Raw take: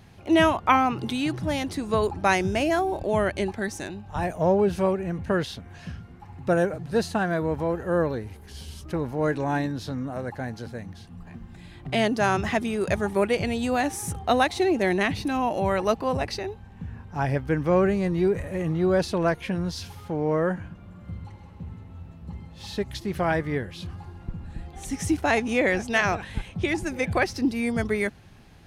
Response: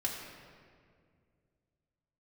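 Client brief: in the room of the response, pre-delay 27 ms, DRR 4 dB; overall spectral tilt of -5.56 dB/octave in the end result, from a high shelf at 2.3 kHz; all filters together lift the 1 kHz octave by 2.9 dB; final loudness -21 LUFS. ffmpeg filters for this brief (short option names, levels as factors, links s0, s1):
-filter_complex "[0:a]equalizer=f=1000:t=o:g=5,highshelf=f=2300:g=-6,asplit=2[s0][s1];[1:a]atrim=start_sample=2205,adelay=27[s2];[s1][s2]afir=irnorm=-1:irlink=0,volume=0.422[s3];[s0][s3]amix=inputs=2:normalize=0,volume=1.26"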